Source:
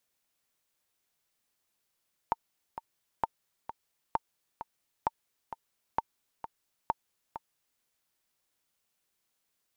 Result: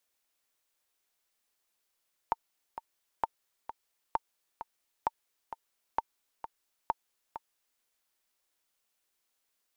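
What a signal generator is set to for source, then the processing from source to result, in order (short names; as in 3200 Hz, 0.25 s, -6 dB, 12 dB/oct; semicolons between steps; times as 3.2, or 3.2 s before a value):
metronome 131 bpm, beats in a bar 2, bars 6, 907 Hz, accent 11.5 dB -13.5 dBFS
bell 130 Hz -12 dB 1.4 oct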